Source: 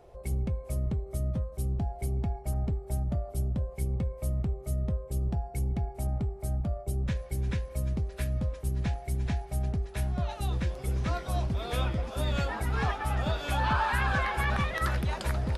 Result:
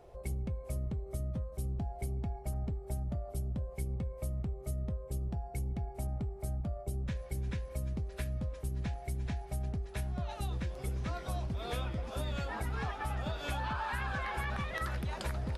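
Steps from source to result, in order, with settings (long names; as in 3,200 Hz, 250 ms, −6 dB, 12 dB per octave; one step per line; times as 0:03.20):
downward compressor, threshold −31 dBFS, peak gain reduction 9 dB
level −1.5 dB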